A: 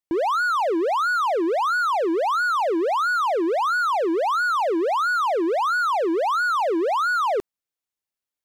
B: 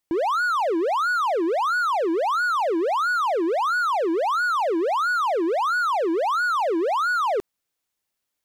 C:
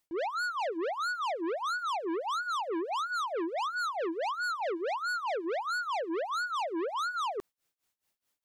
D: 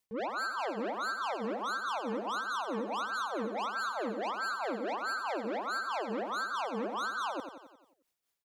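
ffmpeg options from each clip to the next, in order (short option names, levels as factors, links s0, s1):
-af "alimiter=level_in=1.26:limit=0.0631:level=0:latency=1,volume=0.794,volume=2.66"
-af "tremolo=f=4.7:d=0.92,asoftclip=type=tanh:threshold=0.0211,volume=1.41"
-filter_complex "[0:a]aeval=exprs='val(0)*sin(2*PI*120*n/s)':c=same,asplit=2[s0][s1];[s1]aecho=0:1:89|178|267|356|445|534|623:0.398|0.223|0.125|0.0699|0.0392|0.0219|0.0123[s2];[s0][s2]amix=inputs=2:normalize=0"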